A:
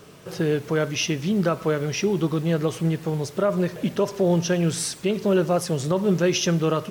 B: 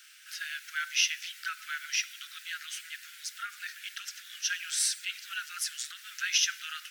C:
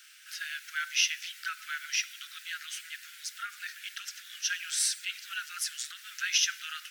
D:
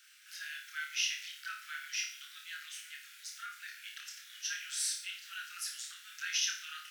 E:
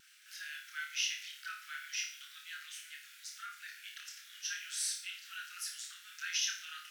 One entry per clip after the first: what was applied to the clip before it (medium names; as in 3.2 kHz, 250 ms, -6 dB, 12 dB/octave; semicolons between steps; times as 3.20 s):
steep high-pass 1.4 kHz 96 dB/octave
no audible change
flutter echo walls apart 4.8 m, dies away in 0.45 s; trim -8 dB
vibrato 1.1 Hz 19 cents; trim -1.5 dB